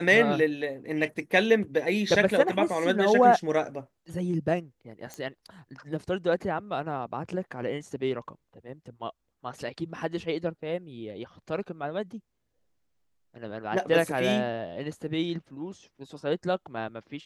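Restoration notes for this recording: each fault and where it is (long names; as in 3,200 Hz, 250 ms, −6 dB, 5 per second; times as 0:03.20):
0:05.14: click −23 dBFS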